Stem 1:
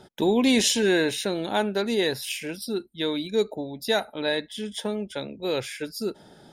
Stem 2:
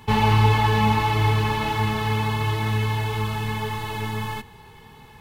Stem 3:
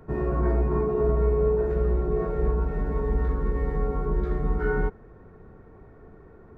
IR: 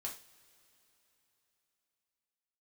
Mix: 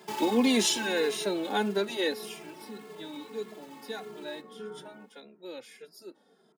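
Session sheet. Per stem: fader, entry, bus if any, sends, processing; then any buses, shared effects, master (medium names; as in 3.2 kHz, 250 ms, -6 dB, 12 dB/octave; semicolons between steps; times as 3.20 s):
2.08 s -1 dB -> 2.41 s -12.5 dB, 0.00 s, no send, no echo send, none
-4.5 dB, 0.00 s, no send, no echo send, compression, threshold -21 dBFS, peak gain reduction 8.5 dB; sample-rate reducer 5.8 kHz, jitter 20%; auto duck -14 dB, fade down 1.85 s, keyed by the first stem
-15.0 dB, 0.00 s, no send, echo send -3.5 dB, none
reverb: none
echo: delay 164 ms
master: steep high-pass 190 Hz 36 dB/octave; endless flanger 2.5 ms -1.7 Hz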